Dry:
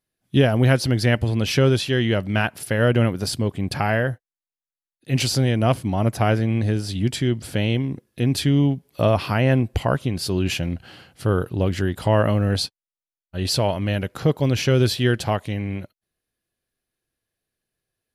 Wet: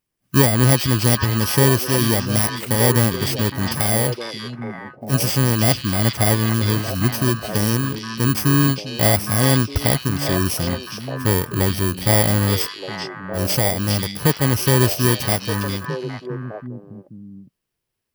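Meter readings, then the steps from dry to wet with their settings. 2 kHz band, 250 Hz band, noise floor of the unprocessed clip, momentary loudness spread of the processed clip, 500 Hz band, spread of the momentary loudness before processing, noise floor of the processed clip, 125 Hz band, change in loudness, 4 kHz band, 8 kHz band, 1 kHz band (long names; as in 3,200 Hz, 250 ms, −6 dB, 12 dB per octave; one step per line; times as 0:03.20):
+2.5 dB, +1.5 dB, below −85 dBFS, 13 LU, 0.0 dB, 7 LU, −71 dBFS, +2.0 dB, +3.0 dB, +3.5 dB, +10.5 dB, +2.5 dB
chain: samples in bit-reversed order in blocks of 32 samples
echo through a band-pass that steps 407 ms, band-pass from 3,500 Hz, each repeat −1.4 octaves, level 0 dB
level +2 dB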